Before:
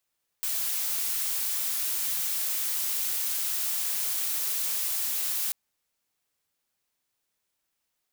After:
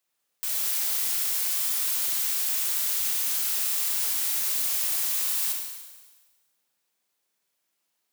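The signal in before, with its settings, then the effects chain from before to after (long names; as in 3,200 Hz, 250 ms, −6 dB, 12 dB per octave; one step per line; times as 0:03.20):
noise blue, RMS −29 dBFS 5.09 s
high-pass filter 150 Hz 12 dB per octave
four-comb reverb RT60 1.3 s, combs from 32 ms, DRR 1 dB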